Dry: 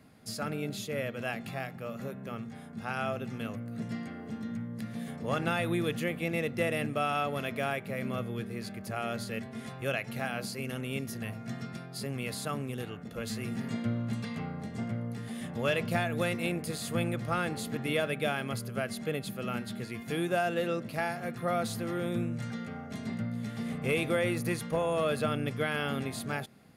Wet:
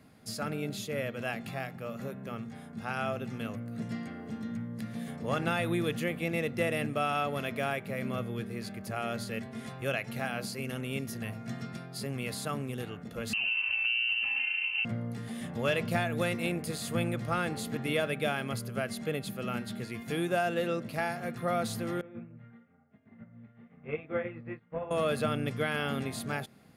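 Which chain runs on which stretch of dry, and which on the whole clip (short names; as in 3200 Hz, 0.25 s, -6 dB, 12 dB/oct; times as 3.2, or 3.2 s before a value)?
13.33–14.85 tilt shelf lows +8 dB, about 1200 Hz + compressor 4:1, threshold -27 dBFS + inverted band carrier 2900 Hz
22.01–24.91 inverse Chebyshev low-pass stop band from 6100 Hz, stop band 50 dB + chorus 1 Hz, delay 19.5 ms, depth 6.3 ms + upward expander 2.5:1, over -44 dBFS
whole clip: dry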